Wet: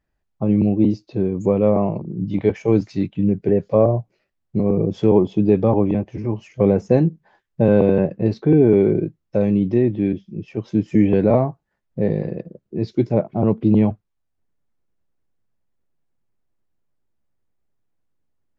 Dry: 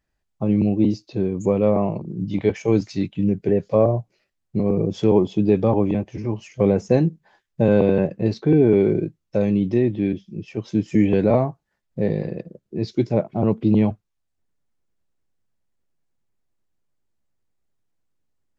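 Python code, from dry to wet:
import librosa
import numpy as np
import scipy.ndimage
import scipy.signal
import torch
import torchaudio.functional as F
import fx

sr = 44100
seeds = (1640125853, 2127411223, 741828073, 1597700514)

y = fx.high_shelf(x, sr, hz=3200.0, db=-11.0)
y = y * librosa.db_to_amplitude(2.0)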